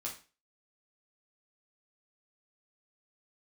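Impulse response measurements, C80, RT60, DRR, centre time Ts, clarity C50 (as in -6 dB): 14.5 dB, 0.35 s, -3.0 dB, 22 ms, 8.5 dB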